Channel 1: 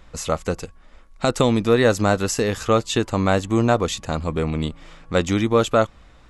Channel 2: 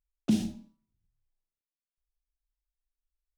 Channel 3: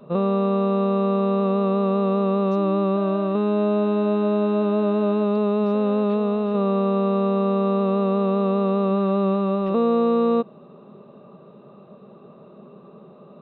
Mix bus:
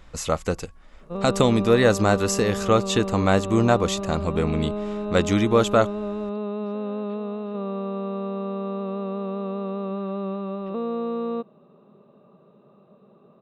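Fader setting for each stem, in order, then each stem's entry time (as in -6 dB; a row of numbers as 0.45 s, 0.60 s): -1.0 dB, mute, -8.5 dB; 0.00 s, mute, 1.00 s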